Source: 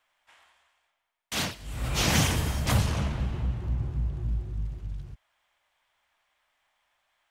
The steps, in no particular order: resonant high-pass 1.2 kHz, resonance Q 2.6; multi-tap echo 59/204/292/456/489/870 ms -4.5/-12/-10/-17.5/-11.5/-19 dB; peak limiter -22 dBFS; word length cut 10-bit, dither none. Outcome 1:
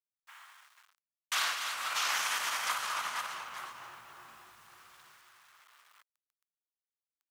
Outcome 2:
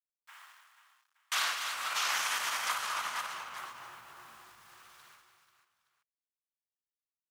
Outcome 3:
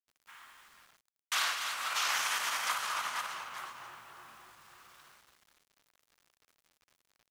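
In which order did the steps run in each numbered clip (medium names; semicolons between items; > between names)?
multi-tap echo > peak limiter > word length cut > resonant high-pass; word length cut > multi-tap echo > peak limiter > resonant high-pass; multi-tap echo > peak limiter > resonant high-pass > word length cut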